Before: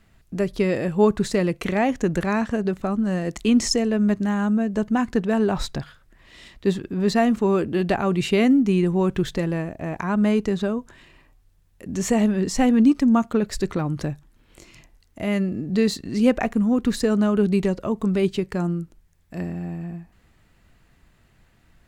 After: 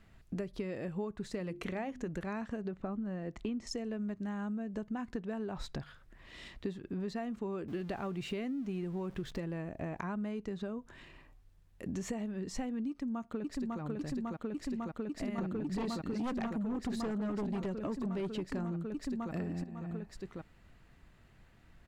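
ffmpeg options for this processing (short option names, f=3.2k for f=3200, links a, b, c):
-filter_complex "[0:a]asettb=1/sr,asplit=3[a][b][c];[a]atrim=end=1.384[d];[b]atrim=start=1.38:end=2.09,asetpts=PTS-STARTPTS,afade=t=in:d=0.004:c=qsin,afade=t=out:st=0.706:d=0.004:c=qsin,bandreject=f=50:t=h:w=6,bandreject=f=100:t=h:w=6,bandreject=f=150:t=h:w=6,bandreject=f=200:t=h:w=6,bandreject=f=250:t=h:w=6,bandreject=f=300:t=h:w=6,bandreject=f=350:t=h:w=6[e];[c]atrim=start=2.086[f];[d][e]acrossfade=d=0.004:c1=hsin:c2=qsin[g];[g][f]acrossfade=d=0.004:c1=qsin:c2=hsin,asettb=1/sr,asplit=3[h][i][j];[h]atrim=end=2.684[k];[i]atrim=start=2.68:end=3.67,asetpts=PTS-STARTPTS,afade=t=in:d=0.004:c=qsin,afade=t=out:st=0.986:d=0.004:c=qsin,aemphasis=mode=reproduction:type=75fm[l];[j]atrim=start=3.666[m];[k][l]acrossfade=d=0.004:c1=hsin:c2=qsin[n];[n][m]acrossfade=d=0.004:c1=qsin:c2=hsin,asettb=1/sr,asplit=3[o][p][q];[o]atrim=end=7.684[r];[p]atrim=start=7.68:end=9.4,asetpts=PTS-STARTPTS,afade=t=in:d=0.004:c=qsin,afade=t=out:st=1.716:d=0.004:c=qsin,aeval=exprs='val(0)+0.5*0.0188*sgn(val(0))':c=same[s];[q]atrim=start=9.396[t];[r][s]acrossfade=d=0.004:c1=hsin:c2=qsin[u];[u][t]acrossfade=d=0.004:c1=qsin:c2=hsin,asplit=2[v][w];[w]afade=t=in:st=12.89:d=0.01,afade=t=out:st=13.81:d=0.01,aecho=0:1:550|1100|1650|2200|2750|3300|3850|4400|4950|5500|6050|6600:0.891251|0.757563|0.643929|0.547339|0.465239|0.395453|0.336135|0.285715|0.242857|0.206429|0.175464|0.149145[x];[v][x]amix=inputs=2:normalize=0,asettb=1/sr,asplit=3[y][z][aa];[y]atrim=end=15.384[ab];[z]atrim=start=15.38:end=19.64,asetpts=PTS-STARTPTS,afade=t=in:d=0.004:c=qsin,afade=t=out:st=4.256:d=0.004:c=qsin,aeval=exprs='0.562*sin(PI/2*2.82*val(0)/0.562)':c=same[ac];[aa]atrim=start=19.636[ad];[ab][ac]acrossfade=d=0.004:c1=hsin:c2=qsin[ae];[ae][ad]acrossfade=d=0.004:c1=qsin:c2=hsin,highshelf=f=5.8k:g=-8,acompressor=threshold=-32dB:ratio=10,volume=-3dB"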